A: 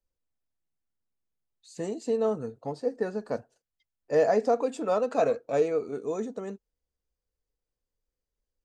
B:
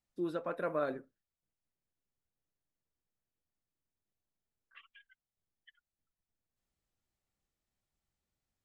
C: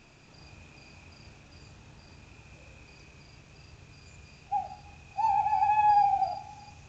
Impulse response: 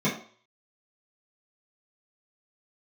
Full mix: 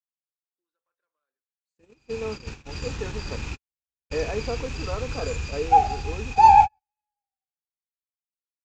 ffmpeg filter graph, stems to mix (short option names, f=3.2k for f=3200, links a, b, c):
-filter_complex "[0:a]highpass=220,acrossover=split=2700[a][b];[b]acompressor=threshold=-53dB:ratio=4:attack=1:release=60[c];[a][c]amix=inputs=2:normalize=0,agate=range=-33dB:threshold=-49dB:ratio=3:detection=peak,volume=-3dB,asplit=2[d][e];[1:a]acompressor=threshold=-36dB:ratio=6,highpass=800,asoftclip=type=hard:threshold=-38dB,adelay=400,volume=-12.5dB[f];[2:a]dynaudnorm=f=230:g=9:m=16dB,asubboost=boost=7:cutoff=51,adelay=1200,volume=3dB[g];[e]apad=whole_len=356658[h];[g][h]sidechaingate=range=-55dB:threshold=-55dB:ratio=16:detection=peak[i];[d][f][i]amix=inputs=3:normalize=0,equalizer=f=650:t=o:w=0.36:g=-11,agate=range=-25dB:threshold=-32dB:ratio=16:detection=peak"